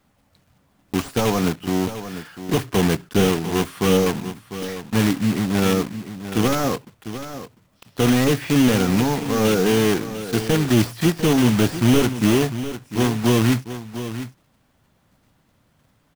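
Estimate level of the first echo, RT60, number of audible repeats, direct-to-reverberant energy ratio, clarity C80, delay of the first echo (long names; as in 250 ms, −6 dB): −12.0 dB, no reverb audible, 1, no reverb audible, no reverb audible, 699 ms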